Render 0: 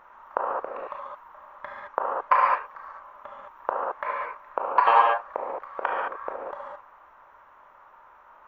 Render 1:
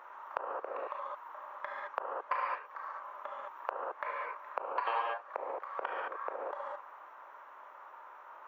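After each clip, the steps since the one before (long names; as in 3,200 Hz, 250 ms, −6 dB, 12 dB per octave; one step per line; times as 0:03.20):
high-pass filter 310 Hz 24 dB per octave
dynamic equaliser 900 Hz, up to −6 dB, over −32 dBFS, Q 0.75
downward compressor 2 to 1, threshold −40 dBFS, peak gain reduction 12 dB
level +1 dB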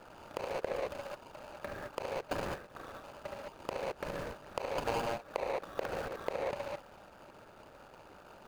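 running median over 41 samples
level +8 dB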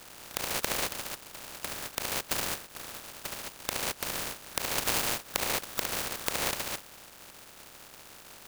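compressing power law on the bin magnitudes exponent 0.24
level +5 dB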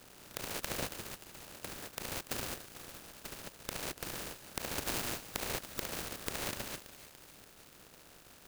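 in parallel at −6 dB: decimation without filtering 38×
on the sum: feedback echo at a low word length 289 ms, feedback 80%, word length 6 bits, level −14 dB
level −8.5 dB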